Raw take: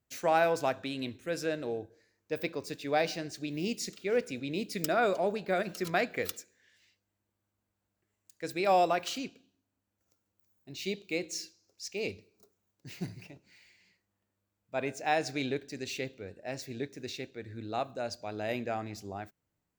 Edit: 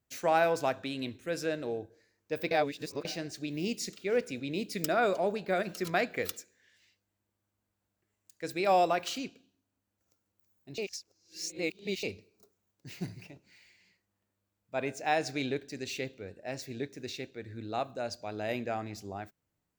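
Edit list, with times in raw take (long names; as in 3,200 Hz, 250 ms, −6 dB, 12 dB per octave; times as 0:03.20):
0:02.51–0:03.05: reverse
0:10.78–0:12.03: reverse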